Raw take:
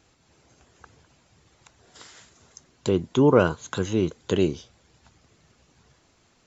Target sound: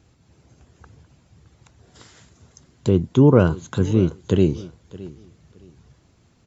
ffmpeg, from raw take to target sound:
ffmpeg -i in.wav -filter_complex "[0:a]equalizer=frequency=93:width=0.33:gain=13,asplit=2[link_01][link_02];[link_02]aecho=0:1:617|1234:0.112|0.0258[link_03];[link_01][link_03]amix=inputs=2:normalize=0,volume=-2.5dB" out.wav

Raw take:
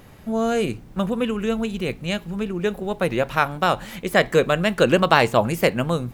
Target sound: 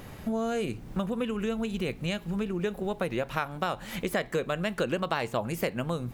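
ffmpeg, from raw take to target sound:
ffmpeg -i in.wav -af "acompressor=threshold=-31dB:ratio=4,volume=2.5dB" out.wav

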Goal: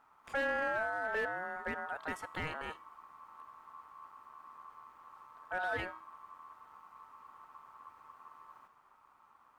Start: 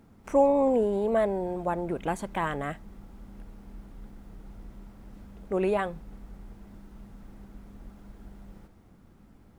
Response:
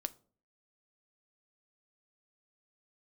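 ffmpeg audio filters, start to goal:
-af "volume=20.5dB,asoftclip=hard,volume=-20.5dB,aeval=exprs='val(0)*sin(2*PI*1100*n/s)':channel_layout=same,bandreject=frequency=322.3:width_type=h:width=4,bandreject=frequency=644.6:width_type=h:width=4,bandreject=frequency=966.9:width_type=h:width=4,bandreject=frequency=1289.2:width_type=h:width=4,bandreject=frequency=1611.5:width_type=h:width=4,bandreject=frequency=1933.8:width_type=h:width=4,bandreject=frequency=2256.1:width_type=h:width=4,bandreject=frequency=2578.4:width_type=h:width=4,bandreject=frequency=2900.7:width_type=h:width=4,bandreject=frequency=3223:width_type=h:width=4,bandreject=frequency=3545.3:width_type=h:width=4,bandreject=frequency=3867.6:width_type=h:width=4,bandreject=frequency=4189.9:width_type=h:width=4,bandreject=frequency=4512.2:width_type=h:width=4,bandreject=frequency=4834.5:width_type=h:width=4,bandreject=frequency=5156.8:width_type=h:width=4,bandreject=frequency=5479.1:width_type=h:width=4,bandreject=frequency=5801.4:width_type=h:width=4,bandreject=frequency=6123.7:width_type=h:width=4,bandreject=frequency=6446:width_type=h:width=4,bandreject=frequency=6768.3:width_type=h:width=4,bandreject=frequency=7090.6:width_type=h:width=4,bandreject=frequency=7412.9:width_type=h:width=4,bandreject=frequency=7735.2:width_type=h:width=4,bandreject=frequency=8057.5:width_type=h:width=4,bandreject=frequency=8379.8:width_type=h:width=4,bandreject=frequency=8702.1:width_type=h:width=4,bandreject=frequency=9024.4:width_type=h:width=4,bandreject=frequency=9346.7:width_type=h:width=4,bandreject=frequency=9669:width_type=h:width=4,bandreject=frequency=9991.3:width_type=h:width=4,bandreject=frequency=10313.6:width_type=h:width=4,bandreject=frequency=10635.9:width_type=h:width=4,bandreject=frequency=10958.2:width_type=h:width=4,bandreject=frequency=11280.5:width_type=h:width=4,bandreject=frequency=11602.8:width_type=h:width=4,bandreject=frequency=11925.1:width_type=h:width=4,bandreject=frequency=12247.4:width_type=h:width=4,bandreject=frequency=12569.7:width_type=h:width=4,volume=-6.5dB"

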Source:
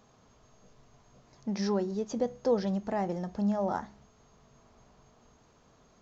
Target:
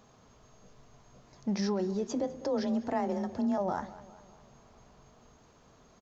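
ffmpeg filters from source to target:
ffmpeg -i in.wav -filter_complex "[0:a]alimiter=level_in=1dB:limit=-24dB:level=0:latency=1:release=18,volume=-1dB,asplit=2[link_01][link_02];[link_02]adelay=202,lowpass=frequency=4100:poles=1,volume=-17dB,asplit=2[link_03][link_04];[link_04]adelay=202,lowpass=frequency=4100:poles=1,volume=0.52,asplit=2[link_05][link_06];[link_06]adelay=202,lowpass=frequency=4100:poles=1,volume=0.52,asplit=2[link_07][link_08];[link_08]adelay=202,lowpass=frequency=4100:poles=1,volume=0.52,asplit=2[link_09][link_10];[link_10]adelay=202,lowpass=frequency=4100:poles=1,volume=0.52[link_11];[link_01][link_03][link_05][link_07][link_09][link_11]amix=inputs=6:normalize=0,asettb=1/sr,asplit=3[link_12][link_13][link_14];[link_12]atrim=end=2.074[link_15];[link_13]atrim=start=2.07:end=3.58,asetpts=PTS-STARTPTS,afade=type=in:duration=0.004:curve=qsin,afade=type=out:start_time=1.506:duration=0.004:curve=qsin,afreqshift=29[link_16];[link_14]atrim=start=3.576[link_17];[link_15][link_16]acrossfade=duration=0.004:curve1=hsin:curve2=qsin[link_18];[link_18][link_17]acrossfade=duration=0.004:curve1=qsin:curve2=hsin,volume=2dB" out.wav

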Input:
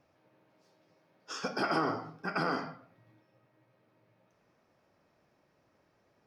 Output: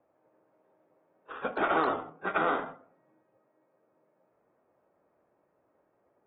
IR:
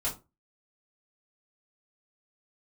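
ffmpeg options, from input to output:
-filter_complex "[0:a]acrossover=split=330 4600:gain=0.158 1 0.0891[link_01][link_02][link_03];[link_01][link_02][link_03]amix=inputs=3:normalize=0,adynamicsmooth=sensitivity=4.5:basefreq=1000,volume=4.5dB" -ar 32000 -c:a aac -b:a 16k

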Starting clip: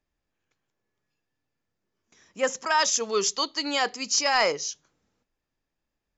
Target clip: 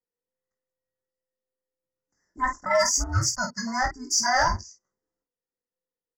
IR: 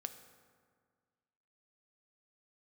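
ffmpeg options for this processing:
-af "afftfilt=real='real(if(between(b,1,1008),(2*floor((b-1)/24)+1)*24-b,b),0)':imag='imag(if(between(b,1,1008),(2*floor((b-1)/24)+1)*24-b,b),0)*if(between(b,1,1008),-1,1)':win_size=2048:overlap=0.75,afwtdn=0.0178,asuperstop=centerf=3100:order=20:qfactor=1.2,aecho=1:1:21|50:0.562|0.376,acontrast=54,volume=-6dB"

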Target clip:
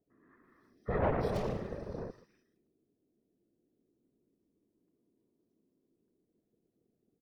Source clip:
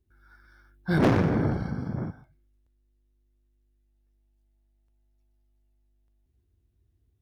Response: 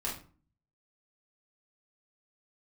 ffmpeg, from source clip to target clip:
-filter_complex "[0:a]aeval=exprs='val(0)*sin(2*PI*300*n/s)':channel_layout=same,acrossover=split=2600[link_01][link_02];[link_02]adelay=320[link_03];[link_01][link_03]amix=inputs=2:normalize=0,afftfilt=real='hypot(re,im)*cos(2*PI*random(0))':imag='hypot(re,im)*sin(2*PI*random(1))':win_size=512:overlap=0.75"

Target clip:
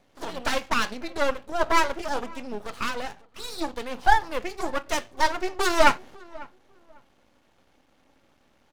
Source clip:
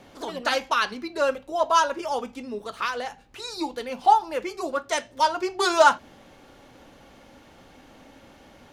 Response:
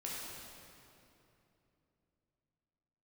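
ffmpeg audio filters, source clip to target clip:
-filter_complex "[0:a]agate=range=-12dB:threshold=-44dB:ratio=16:detection=peak,aeval=exprs='max(val(0),0)':channel_layout=same,asplit=2[link_01][link_02];[link_02]adelay=549,lowpass=frequency=1400:poles=1,volume=-21dB,asplit=2[link_03][link_04];[link_04]adelay=549,lowpass=frequency=1400:poles=1,volume=0.24[link_05];[link_01][link_03][link_05]amix=inputs=3:normalize=0,volume=3dB"

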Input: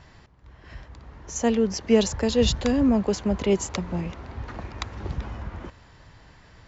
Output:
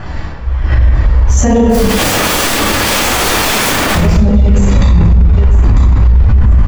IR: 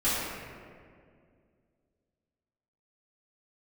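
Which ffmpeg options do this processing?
-filter_complex "[0:a]tremolo=f=29:d=0.621,asubboost=boost=6:cutoff=150,aecho=1:1:947|1894|2841:0.631|0.151|0.0363,acompressor=threshold=-23dB:ratio=4,highshelf=frequency=3800:gain=-5.5,aphaser=in_gain=1:out_gain=1:delay=2.2:decay=0.57:speed=1.4:type=sinusoidal,bandreject=frequency=50:width_type=h:width=6,bandreject=frequency=100:width_type=h:width=6,bandreject=frequency=150:width_type=h:width=6,bandreject=frequency=200:width_type=h:width=6,bandreject=frequency=250:width_type=h:width=6,asettb=1/sr,asplit=3[link_01][link_02][link_03];[link_01]atrim=end=1.694[link_04];[link_02]atrim=start=1.69:end=3.95,asetpts=PTS-STARTPTS,afade=type=in:duration=0.004:curve=qsin,afade=type=out:start_time=2.256:duration=0.004:curve=qsin,aeval=exprs='(mod(44.7*val(0)+1,2)-1)/44.7':channel_layout=same[link_05];[link_03]atrim=start=3.946[link_06];[link_04][link_05]acrossfade=duration=0.004:curve1=hsin:curve2=qsin[link_07];[link_07][link_06]acrossfade=duration=0.004:curve1=qsin:curve2=hsin[link_08];[1:a]atrim=start_sample=2205,afade=type=out:start_time=0.38:duration=0.01,atrim=end_sample=17199[link_09];[link_08][link_09]afir=irnorm=-1:irlink=0,alimiter=level_in=17dB:limit=-1dB:release=50:level=0:latency=1,volume=-1dB"

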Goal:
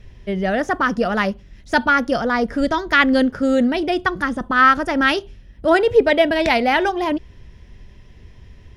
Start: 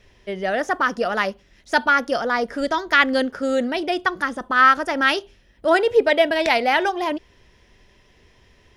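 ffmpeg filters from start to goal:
ffmpeg -i in.wav -af "bass=frequency=250:gain=14,treble=frequency=4000:gain=-2,volume=1dB" out.wav

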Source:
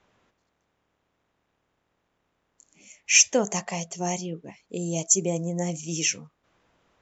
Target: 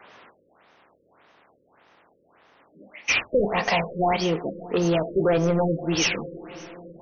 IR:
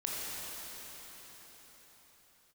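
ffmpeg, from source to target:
-filter_complex "[0:a]asplit=2[link_01][link_02];[link_02]highpass=frequency=720:poles=1,volume=34dB,asoftclip=type=tanh:threshold=-3.5dB[link_03];[link_01][link_03]amix=inputs=2:normalize=0,lowpass=frequency=5500:poles=1,volume=-6dB,asplit=2[link_04][link_05];[1:a]atrim=start_sample=2205,highshelf=frequency=2000:gain=-6[link_06];[link_05][link_06]afir=irnorm=-1:irlink=0,volume=-14dB[link_07];[link_04][link_07]amix=inputs=2:normalize=0,afftfilt=real='re*lt(b*sr/1024,560*pow(6600/560,0.5+0.5*sin(2*PI*1.7*pts/sr)))':imag='im*lt(b*sr/1024,560*pow(6600/560,0.5+0.5*sin(2*PI*1.7*pts/sr)))':win_size=1024:overlap=0.75,volume=-8.5dB"

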